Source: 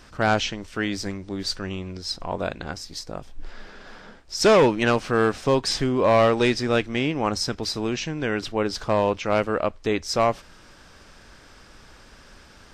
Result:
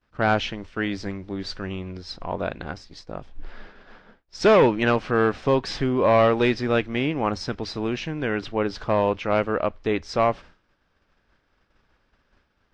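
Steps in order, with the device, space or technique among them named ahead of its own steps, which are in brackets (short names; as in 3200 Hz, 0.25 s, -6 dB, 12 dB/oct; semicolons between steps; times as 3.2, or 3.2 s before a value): hearing-loss simulation (LPF 3400 Hz 12 dB/oct; expander -37 dBFS)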